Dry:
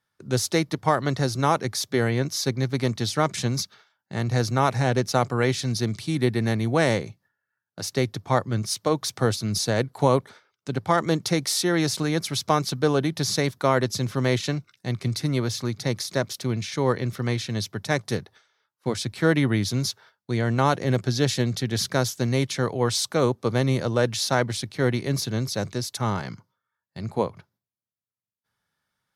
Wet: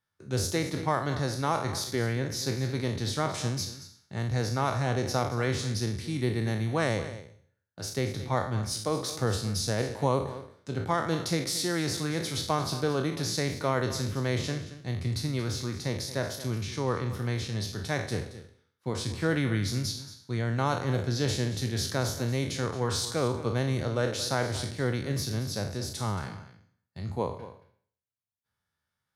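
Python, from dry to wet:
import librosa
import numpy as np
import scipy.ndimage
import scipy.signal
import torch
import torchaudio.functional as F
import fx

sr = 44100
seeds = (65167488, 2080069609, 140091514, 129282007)

y = fx.spec_trails(x, sr, decay_s=0.54)
y = fx.peak_eq(y, sr, hz=79.0, db=11.5, octaves=0.71)
y = y + 10.0 ** (-14.5 / 20.0) * np.pad(y, (int(225 * sr / 1000.0), 0))[:len(y)]
y = y * 10.0 ** (-8.0 / 20.0)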